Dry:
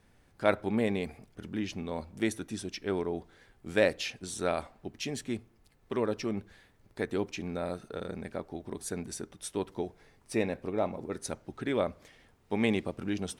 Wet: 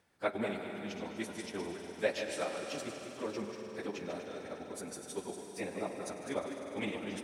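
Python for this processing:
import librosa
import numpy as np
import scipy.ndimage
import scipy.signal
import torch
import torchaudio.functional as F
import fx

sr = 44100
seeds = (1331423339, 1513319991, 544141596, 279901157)

y = fx.reverse_delay_fb(x, sr, ms=220, feedback_pct=42, wet_db=-7.5)
y = fx.highpass(y, sr, hz=270.0, slope=6)
y = fx.echo_swell(y, sr, ms=93, loudest=5, wet_db=-14.5)
y = fx.stretch_vocoder_free(y, sr, factor=0.54)
y = y * librosa.db_to_amplitude(-2.0)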